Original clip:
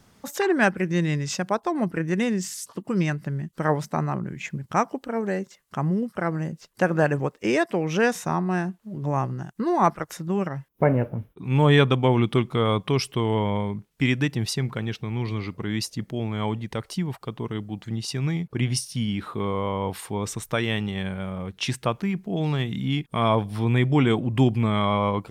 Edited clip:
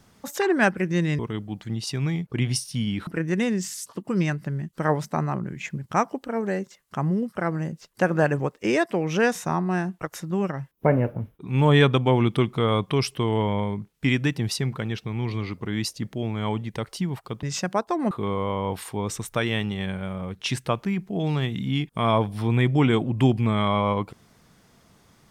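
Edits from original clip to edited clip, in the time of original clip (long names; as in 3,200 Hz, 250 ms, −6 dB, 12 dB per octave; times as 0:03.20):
0:01.19–0:01.87: swap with 0:17.40–0:19.28
0:08.81–0:09.98: remove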